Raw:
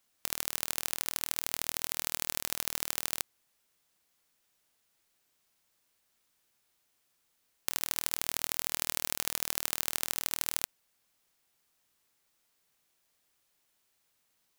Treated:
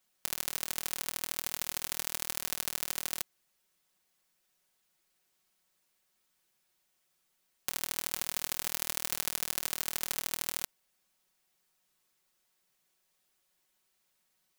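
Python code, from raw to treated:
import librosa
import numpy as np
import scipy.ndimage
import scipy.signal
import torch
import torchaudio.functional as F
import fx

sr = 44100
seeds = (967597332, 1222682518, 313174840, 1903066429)

y = x + 0.69 * np.pad(x, (int(5.4 * sr / 1000.0), 0))[:len(x)]
y = F.gain(torch.from_numpy(y), -3.0).numpy()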